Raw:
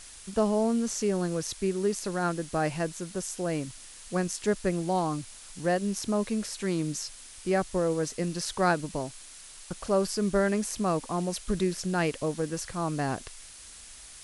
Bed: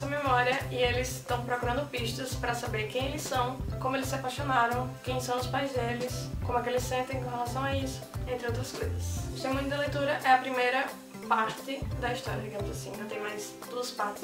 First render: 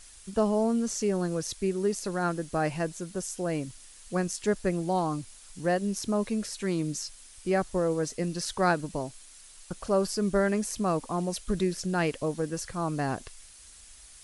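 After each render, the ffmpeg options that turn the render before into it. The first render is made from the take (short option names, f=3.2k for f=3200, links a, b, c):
-af "afftdn=nr=6:nf=-48"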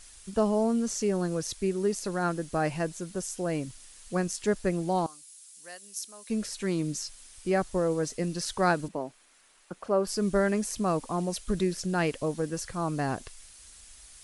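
-filter_complex "[0:a]asettb=1/sr,asplit=3[a][b][c];[a]atrim=end=5.064[d];[b]atrim=start=5.06:end=6.3,asetpts=PTS-STARTPTS,afade=t=in:d=0.004:c=qsin,afade=t=out:st=1.236:d=0.004:c=qsin,aderivative[e];[c]atrim=start=6.296[f];[d][e]acrossfade=d=0.004:c1=hsin:c2=qsin[g];[g][f]acrossfade=d=0.004:c1=qsin:c2=hsin,asettb=1/sr,asplit=3[h][i][j];[h]atrim=end=8.884[k];[i]atrim=start=8.88:end=10.07,asetpts=PTS-STARTPTS,afade=t=in:d=0.004:c=qsin,afade=t=out:st=1.186:d=0.004:c=qsin,acrossover=split=180 2600:gain=0.112 1 0.251[l][m][n];[l][m][n]amix=inputs=3:normalize=0[o];[j]atrim=start=10.066[p];[k][o]acrossfade=d=0.004:c1=hsin:c2=qsin[q];[q][p]acrossfade=d=0.004:c1=qsin:c2=hsin"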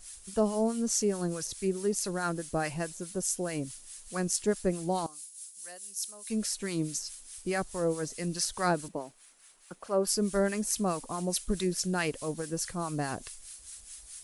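-filter_complex "[0:a]acrossover=split=940[a][b];[a]aeval=exprs='val(0)*(1-0.7/2+0.7/2*cos(2*PI*4.7*n/s))':c=same[c];[b]aeval=exprs='val(0)*(1-0.7/2-0.7/2*cos(2*PI*4.7*n/s))':c=same[d];[c][d]amix=inputs=2:normalize=0,crystalizer=i=1.5:c=0"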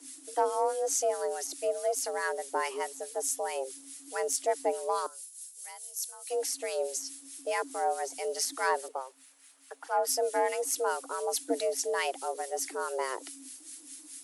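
-af "asoftclip=type=tanh:threshold=-15dB,afreqshift=260"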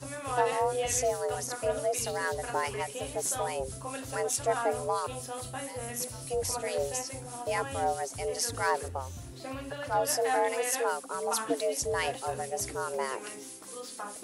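-filter_complex "[1:a]volume=-8.5dB[a];[0:a][a]amix=inputs=2:normalize=0"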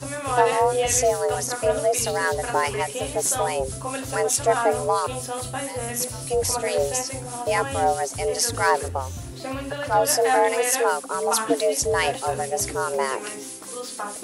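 -af "volume=8.5dB"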